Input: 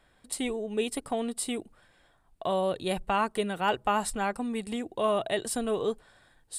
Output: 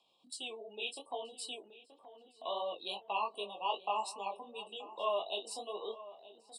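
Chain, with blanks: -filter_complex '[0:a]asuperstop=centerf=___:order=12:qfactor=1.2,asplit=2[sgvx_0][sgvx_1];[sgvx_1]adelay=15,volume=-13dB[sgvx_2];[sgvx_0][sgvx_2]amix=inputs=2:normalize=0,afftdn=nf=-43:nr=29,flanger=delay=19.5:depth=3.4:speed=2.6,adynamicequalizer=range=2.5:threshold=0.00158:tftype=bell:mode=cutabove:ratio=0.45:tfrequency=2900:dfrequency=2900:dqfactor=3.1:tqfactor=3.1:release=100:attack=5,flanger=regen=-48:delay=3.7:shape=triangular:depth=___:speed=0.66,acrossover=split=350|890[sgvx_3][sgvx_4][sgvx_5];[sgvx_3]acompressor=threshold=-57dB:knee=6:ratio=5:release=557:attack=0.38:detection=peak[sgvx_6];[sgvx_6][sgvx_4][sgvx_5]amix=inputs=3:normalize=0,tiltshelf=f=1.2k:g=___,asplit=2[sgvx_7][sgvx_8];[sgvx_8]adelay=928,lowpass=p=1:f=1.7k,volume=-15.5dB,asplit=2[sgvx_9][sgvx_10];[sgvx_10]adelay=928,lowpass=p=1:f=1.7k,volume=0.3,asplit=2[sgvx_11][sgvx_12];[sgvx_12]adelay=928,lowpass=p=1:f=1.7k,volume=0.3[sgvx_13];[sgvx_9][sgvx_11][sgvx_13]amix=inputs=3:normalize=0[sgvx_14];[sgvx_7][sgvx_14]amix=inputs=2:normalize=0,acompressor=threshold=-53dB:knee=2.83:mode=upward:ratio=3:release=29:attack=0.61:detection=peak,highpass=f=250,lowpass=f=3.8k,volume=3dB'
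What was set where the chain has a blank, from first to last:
1700, 7.6, -8.5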